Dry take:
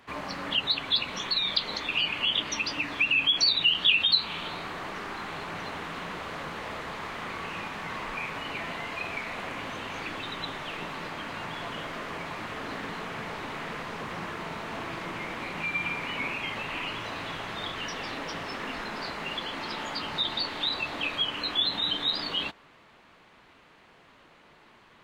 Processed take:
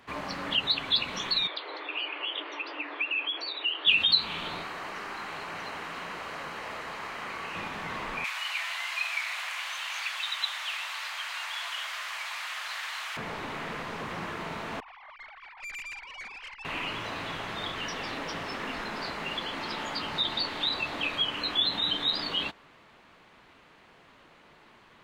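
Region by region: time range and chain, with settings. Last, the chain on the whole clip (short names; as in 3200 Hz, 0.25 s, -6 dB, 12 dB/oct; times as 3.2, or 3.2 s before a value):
1.47–3.87 steep high-pass 300 Hz 96 dB/oct + air absorption 400 m
4.63–7.55 low shelf 340 Hz -9 dB + notch 3500 Hz, Q 11
8.24–13.17 Bessel high-pass 1200 Hz, order 8 + high shelf 2300 Hz +10 dB
14.8–16.65 sine-wave speech + tube stage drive 37 dB, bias 0.6 + air absorption 52 m
whole clip: dry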